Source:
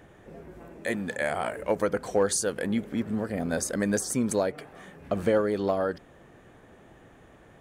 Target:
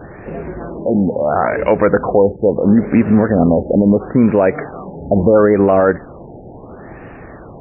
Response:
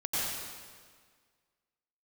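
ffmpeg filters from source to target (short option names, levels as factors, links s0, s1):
-af "alimiter=level_in=10:limit=0.891:release=50:level=0:latency=1,afftfilt=real='re*lt(b*sr/1024,880*pow(2900/880,0.5+0.5*sin(2*PI*0.74*pts/sr)))':imag='im*lt(b*sr/1024,880*pow(2900/880,0.5+0.5*sin(2*PI*0.74*pts/sr)))':win_size=1024:overlap=0.75,volume=0.891"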